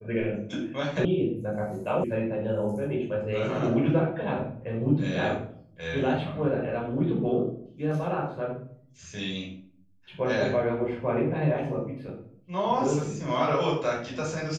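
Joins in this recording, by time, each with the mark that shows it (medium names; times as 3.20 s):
1.05 s: sound stops dead
2.04 s: sound stops dead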